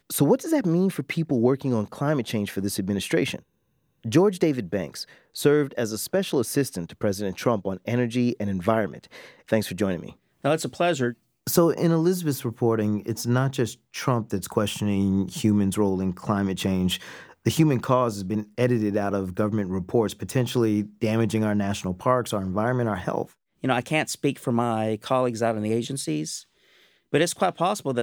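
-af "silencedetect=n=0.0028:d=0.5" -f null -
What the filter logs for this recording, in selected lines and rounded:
silence_start: 3.43
silence_end: 4.04 | silence_duration: 0.61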